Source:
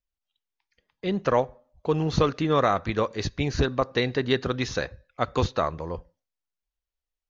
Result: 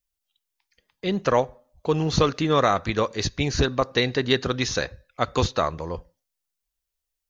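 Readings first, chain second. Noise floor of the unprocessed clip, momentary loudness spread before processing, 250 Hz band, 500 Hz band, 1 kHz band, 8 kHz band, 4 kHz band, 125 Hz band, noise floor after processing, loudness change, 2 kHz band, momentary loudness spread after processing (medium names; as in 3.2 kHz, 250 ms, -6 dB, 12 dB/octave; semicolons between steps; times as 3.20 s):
under -85 dBFS, 11 LU, +1.5 dB, +1.5 dB, +2.0 dB, no reading, +6.0 dB, +1.5 dB, -83 dBFS, +2.5 dB, +3.0 dB, 12 LU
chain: treble shelf 4.5 kHz +10.5 dB; trim +1.5 dB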